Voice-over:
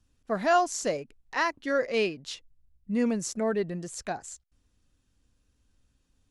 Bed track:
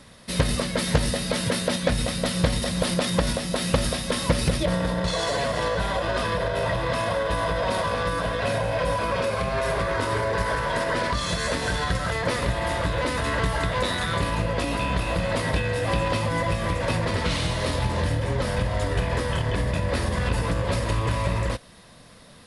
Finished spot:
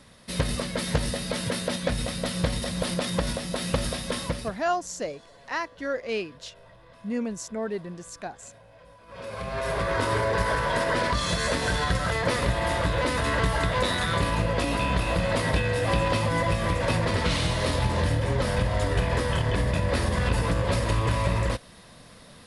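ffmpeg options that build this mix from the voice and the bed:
-filter_complex "[0:a]adelay=4150,volume=0.708[s0];[1:a]volume=15,afade=t=out:st=4.15:d=0.41:silence=0.0668344,afade=t=in:st=9.06:d=0.95:silence=0.0421697[s1];[s0][s1]amix=inputs=2:normalize=0"

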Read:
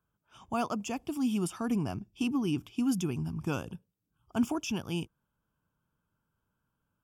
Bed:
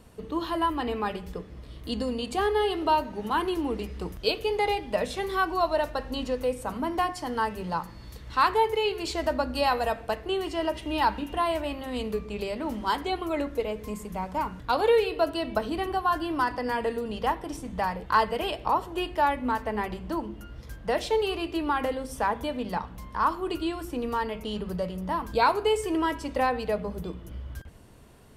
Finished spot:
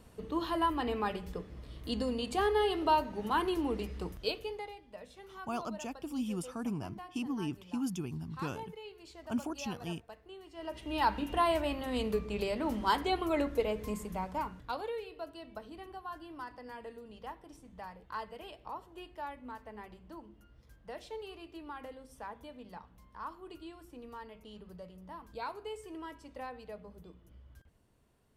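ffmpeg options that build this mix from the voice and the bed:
-filter_complex "[0:a]adelay=4950,volume=0.501[s0];[1:a]volume=5.96,afade=t=out:st=3.95:d=0.76:silence=0.133352,afade=t=in:st=10.52:d=0.78:silence=0.105925,afade=t=out:st=13.88:d=1.03:silence=0.158489[s1];[s0][s1]amix=inputs=2:normalize=0"

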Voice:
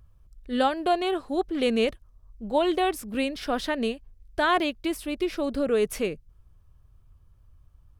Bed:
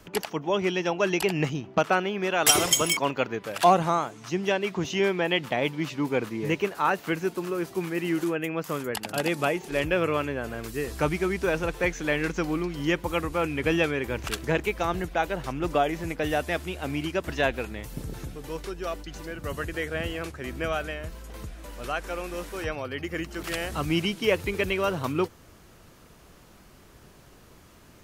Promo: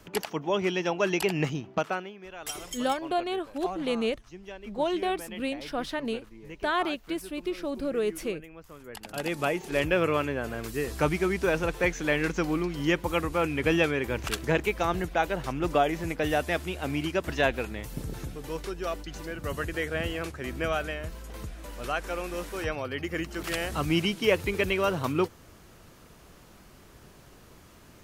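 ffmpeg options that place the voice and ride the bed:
-filter_complex "[0:a]adelay=2250,volume=0.596[s0];[1:a]volume=6.31,afade=t=out:st=1.56:d=0.61:silence=0.158489,afade=t=in:st=8.79:d=0.91:silence=0.133352[s1];[s0][s1]amix=inputs=2:normalize=0"

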